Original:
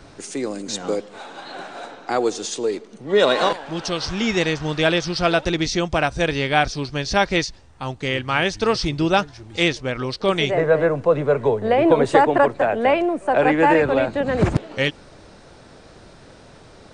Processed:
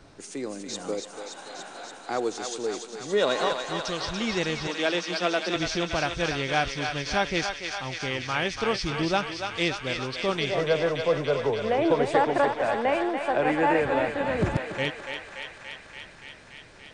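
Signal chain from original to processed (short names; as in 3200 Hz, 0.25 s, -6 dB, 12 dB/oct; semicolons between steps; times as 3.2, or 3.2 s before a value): 4.67–5.56 steep high-pass 180 Hz 96 dB/oct; thinning echo 0.287 s, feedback 82%, high-pass 680 Hz, level -5 dB; gain -7.5 dB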